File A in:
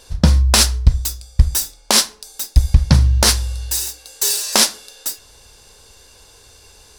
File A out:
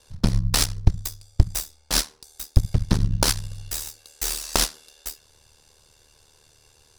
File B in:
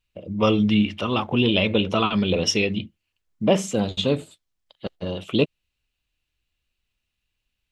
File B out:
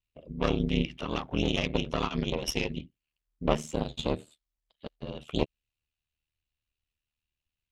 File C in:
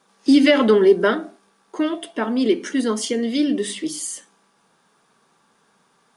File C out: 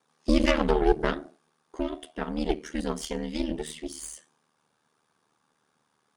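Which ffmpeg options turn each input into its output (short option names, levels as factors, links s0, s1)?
-af "aeval=exprs='0.891*(cos(1*acos(clip(val(0)/0.891,-1,1)))-cos(1*PI/2))+0.251*(cos(2*acos(clip(val(0)/0.891,-1,1)))-cos(2*PI/2))+0.0708*(cos(3*acos(clip(val(0)/0.891,-1,1)))-cos(3*PI/2))+0.0891*(cos(6*acos(clip(val(0)/0.891,-1,1)))-cos(6*PI/2))':c=same,aeval=exprs='val(0)*sin(2*PI*38*n/s)':c=same,volume=0.531"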